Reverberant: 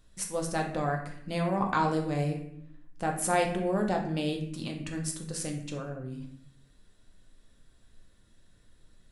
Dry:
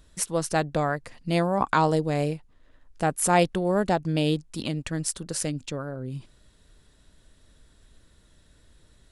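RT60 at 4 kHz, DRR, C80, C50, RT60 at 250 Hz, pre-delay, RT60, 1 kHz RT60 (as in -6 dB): 0.50 s, 1.5 dB, 10.5 dB, 7.0 dB, 1.0 s, 4 ms, 0.70 s, 0.65 s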